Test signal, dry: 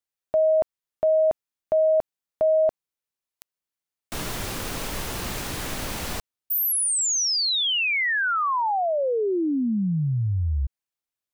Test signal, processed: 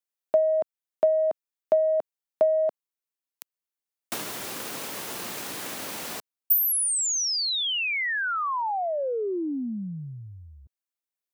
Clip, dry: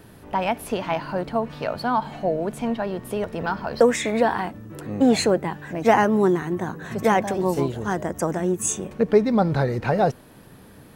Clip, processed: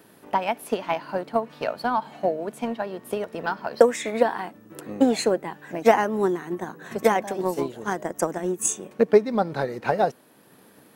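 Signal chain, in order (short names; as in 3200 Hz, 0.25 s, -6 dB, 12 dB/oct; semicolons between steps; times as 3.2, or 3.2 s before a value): HPF 230 Hz 12 dB/oct; high shelf 9700 Hz +5 dB; transient shaper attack +7 dB, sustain -2 dB; gain -4 dB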